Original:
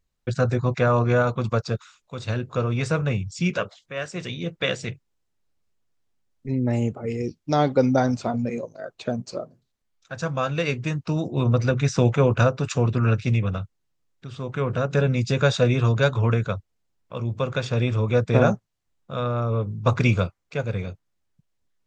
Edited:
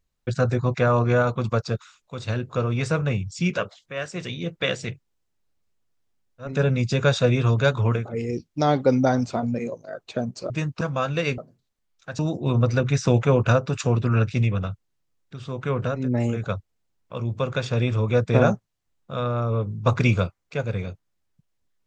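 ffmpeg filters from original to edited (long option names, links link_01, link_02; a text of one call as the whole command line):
ffmpeg -i in.wav -filter_complex "[0:a]asplit=9[link_01][link_02][link_03][link_04][link_05][link_06][link_07][link_08][link_09];[link_01]atrim=end=6.62[link_10];[link_02]atrim=start=14.76:end=16.51[link_11];[link_03]atrim=start=6.8:end=9.412[link_12];[link_04]atrim=start=10.788:end=11.102[link_13];[link_05]atrim=start=10.218:end=10.792[link_14];[link_06]atrim=start=9.408:end=10.222[link_15];[link_07]atrim=start=11.098:end=15[link_16];[link_08]atrim=start=6.38:end=7.04[link_17];[link_09]atrim=start=16.27[link_18];[link_10][link_11]acrossfade=duration=0.24:curve1=tri:curve2=tri[link_19];[link_19][link_12]acrossfade=duration=0.24:curve1=tri:curve2=tri[link_20];[link_20][link_13]acrossfade=duration=0.004:curve1=hsin:curve2=hsin[link_21];[link_21][link_14]acrossfade=duration=0.004:curve1=hsin:curve2=hsin[link_22];[link_22][link_15]acrossfade=duration=0.004:curve1=hsin:curve2=hsin[link_23];[link_23][link_16]acrossfade=duration=0.004:curve1=hsin:curve2=hsin[link_24];[link_24][link_17]acrossfade=duration=0.24:curve1=tri:curve2=tri[link_25];[link_25][link_18]acrossfade=duration=0.24:curve1=tri:curve2=tri" out.wav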